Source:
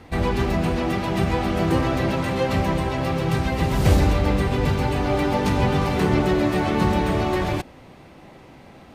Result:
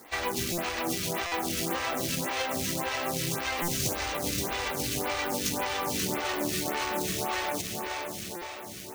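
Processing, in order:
high-pass filter 140 Hz 6 dB per octave
parametric band 6,200 Hz +9 dB 0.47 octaves
mains-hum notches 50/100/150/200 Hz
feedback delay with all-pass diffusion 496 ms, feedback 60%, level −8.5 dB
log-companded quantiser 4 bits
tilt shelving filter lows −6 dB, about 1,400 Hz
downward compressor, threshold −23 dBFS, peak gain reduction 7 dB
buffer that repeats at 0:00.52/0:01.26/0:03.62/0:08.36, samples 256, times 9
phaser with staggered stages 1.8 Hz

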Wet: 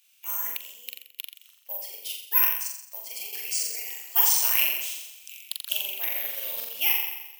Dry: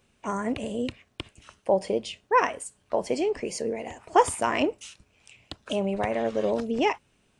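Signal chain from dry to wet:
high-pass filter 1,400 Hz 12 dB per octave
flutter between parallel walls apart 7.4 metres, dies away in 0.99 s
bad sample-rate conversion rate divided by 3×, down none, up zero stuff
high shelf with overshoot 2,100 Hz +9.5 dB, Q 1.5
0:00.57–0:03.33: expander for the loud parts 1.5 to 1, over −36 dBFS
level −7 dB

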